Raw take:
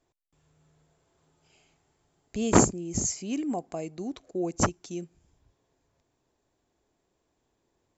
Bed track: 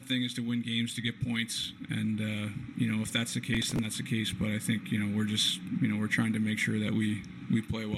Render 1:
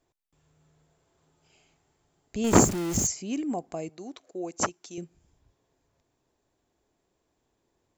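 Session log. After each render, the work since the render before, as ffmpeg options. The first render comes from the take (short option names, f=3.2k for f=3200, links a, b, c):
-filter_complex "[0:a]asettb=1/sr,asplit=3[a][b][c];[a]atrim=end=2.444[d];[b]atrim=start=2.44:end=3.07,asetpts=PTS-STARTPTS,afade=t=in:d=0.004:c=qsin,afade=t=out:st=0.626:d=0.004:c=qsin,aeval=exprs='val(0)+0.5*0.0376*sgn(val(0))':c=same[e];[c]atrim=start=3.066[f];[d][e]acrossfade=d=0.004:c1=hsin:c2=qsin[g];[g][f]acrossfade=d=0.004:c1=qsin:c2=hsin,asettb=1/sr,asplit=3[h][i][j];[h]atrim=end=3.894[k];[i]atrim=start=3.89:end=4.98,asetpts=PTS-STARTPTS,afade=t=in:d=0.004:c=qsin,afade=t=out:st=1.086:d=0.004:c=qsin,highpass=f=520:p=1[l];[j]atrim=start=4.976[m];[k][l]acrossfade=d=0.004:c1=hsin:c2=qsin[n];[n][m]acrossfade=d=0.004:c1=qsin:c2=hsin"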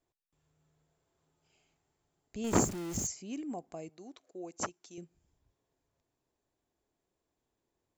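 -af "volume=-9dB"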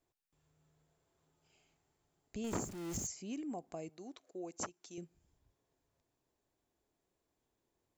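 -af "acompressor=threshold=-39dB:ratio=3"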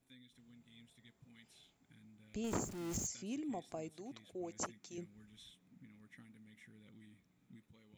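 -filter_complex "[1:a]volume=-31dB[a];[0:a][a]amix=inputs=2:normalize=0"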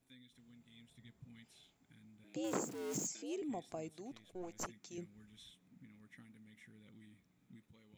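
-filter_complex "[0:a]asettb=1/sr,asplit=3[a][b][c];[a]atrim=end=0.904[d];[b]atrim=start=0.9:end=1.44,asetpts=PTS-STARTPTS,afade=t=in:d=0.004:c=qsin,afade=t=out:st=0.536:d=0.004:c=qsin,bass=f=250:g=8,treble=f=4k:g=-1[e];[c]atrim=start=1.436[f];[d][e]acrossfade=d=0.004:c1=hsin:c2=qsin[g];[g][f]acrossfade=d=0.004:c1=qsin:c2=hsin,asettb=1/sr,asplit=3[h][i][j];[h]atrim=end=2.244[k];[i]atrim=start=2.24:end=3.42,asetpts=PTS-STARTPTS,afade=t=in:d=0.004:c=qsin,afade=t=out:st=1.176:d=0.004:c=qsin,afreqshift=95[l];[j]atrim=start=3.416[m];[k][l]acrossfade=d=0.004:c1=hsin:c2=qsin[n];[n][m]acrossfade=d=0.004:c1=qsin:c2=hsin,asettb=1/sr,asplit=3[o][p][q];[o]atrim=end=4.124[r];[p]atrim=start=4.12:end=4.65,asetpts=PTS-STARTPTS,afade=t=in:d=0.004:c=qsin,afade=t=out:st=0.526:d=0.004:c=qsin,aeval=exprs='if(lt(val(0),0),0.447*val(0),val(0))':c=same[s];[q]atrim=start=4.646[t];[r][s]acrossfade=d=0.004:c1=hsin:c2=qsin[u];[u][t]acrossfade=d=0.004:c1=qsin:c2=hsin"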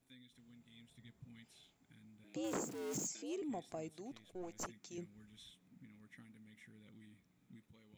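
-af "asoftclip=type=tanh:threshold=-31.5dB"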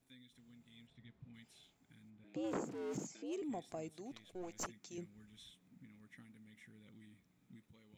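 -filter_complex "[0:a]asettb=1/sr,asplit=3[a][b][c];[a]atrim=end=0.874[d];[b]atrim=start=0.87:end=1.34,asetpts=PTS-STARTPTS,afade=t=in:d=0.004:c=qsin,afade=t=out:st=0.466:d=0.004:c=qsin,lowpass=3.8k[e];[c]atrim=start=1.336[f];[d][e]acrossfade=d=0.004:c1=hsin:c2=qsin[g];[g][f]acrossfade=d=0.004:c1=qsin:c2=hsin,asplit=3[h][i][j];[h]afade=t=out:st=2.09:d=0.02[k];[i]aemphasis=mode=reproduction:type=75fm,afade=t=in:st=2.09:d=0.02,afade=t=out:st=3.31:d=0.02[l];[j]afade=t=in:st=3.31:d=0.02[m];[k][l][m]amix=inputs=3:normalize=0,asettb=1/sr,asplit=3[n][o][p];[n]atrim=end=4.104[q];[o]atrim=start=4.1:end=4.67,asetpts=PTS-STARTPTS,afade=t=in:d=0.004:c=qsin,afade=t=out:st=0.566:d=0.004:c=qsin,equalizer=f=3.2k:t=o:w=2.3:g=3.5[r];[p]atrim=start=4.666[s];[q][r]acrossfade=d=0.004:c1=hsin:c2=qsin[t];[t][s]acrossfade=d=0.004:c1=qsin:c2=hsin"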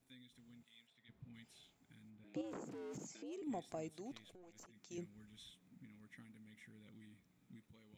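-filter_complex "[0:a]asplit=3[a][b][c];[a]afade=t=out:st=0.63:d=0.02[d];[b]highpass=f=1.2k:p=1,afade=t=in:st=0.63:d=0.02,afade=t=out:st=1.08:d=0.02[e];[c]afade=t=in:st=1.08:d=0.02[f];[d][e][f]amix=inputs=3:normalize=0,asettb=1/sr,asplit=3[g][h][i];[g]atrim=end=2.414[j];[h]atrim=start=2.41:end=3.47,asetpts=PTS-STARTPTS,afade=t=in:d=0.004:c=qsin,afade=t=out:st=1.056:d=0.004:c=qsin,acompressor=threshold=-46dB:ratio=4:attack=3.2:release=140:knee=1:detection=peak[k];[i]atrim=start=3.466[l];[j][k]acrossfade=d=0.004:c1=hsin:c2=qsin[m];[m][l]acrossfade=d=0.004:c1=qsin:c2=hsin,asettb=1/sr,asplit=3[n][o][p];[n]atrim=end=4.344[q];[o]atrim=start=4.34:end=4.91,asetpts=PTS-STARTPTS,afade=t=in:d=0.004:c=qsin,afade=t=out:st=0.566:d=0.004:c=qsin,acompressor=threshold=-58dB:ratio=5:attack=3.2:release=140:knee=1:detection=peak[r];[p]atrim=start=4.906[s];[q][r]acrossfade=d=0.004:c1=hsin:c2=qsin[t];[t][s]acrossfade=d=0.004:c1=qsin:c2=hsin"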